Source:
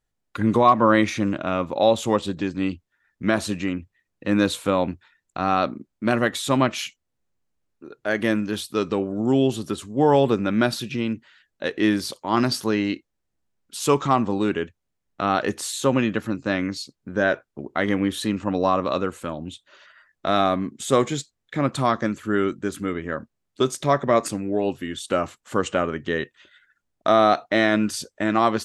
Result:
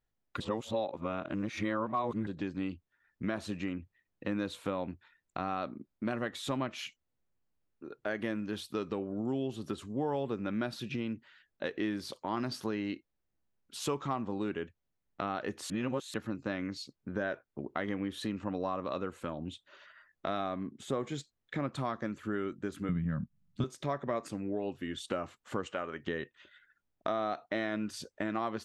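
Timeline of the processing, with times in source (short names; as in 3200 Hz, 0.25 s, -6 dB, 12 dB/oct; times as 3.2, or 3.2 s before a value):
0.4–2.27 reverse
15.7–16.14 reverse
20.63–21.04 high shelf 2100 Hz -8.5 dB
22.89–23.64 resonant low shelf 260 Hz +13.5 dB, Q 3
25.67–26.07 low shelf 380 Hz -11 dB
whole clip: bell 9700 Hz -8.5 dB 1.7 oct; compressor 3:1, threshold -29 dBFS; gain -4.5 dB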